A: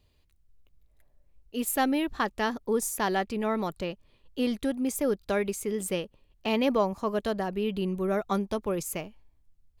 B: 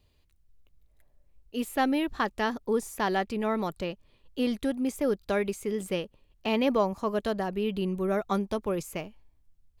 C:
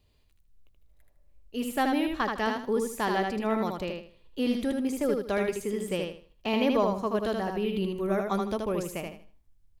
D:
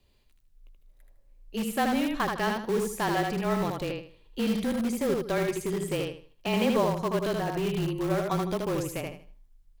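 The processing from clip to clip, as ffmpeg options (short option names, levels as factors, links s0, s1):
-filter_complex "[0:a]acrossover=split=4000[s0][s1];[s1]acompressor=threshold=0.00891:ratio=4:attack=1:release=60[s2];[s0][s2]amix=inputs=2:normalize=0"
-af "aecho=1:1:78|156|234|312:0.631|0.17|0.046|0.0124,volume=0.891"
-filter_complex "[0:a]afreqshift=-28,asplit=2[s0][s1];[s1]aeval=exprs='(mod(18.8*val(0)+1,2)-1)/18.8':c=same,volume=0.266[s2];[s0][s2]amix=inputs=2:normalize=0"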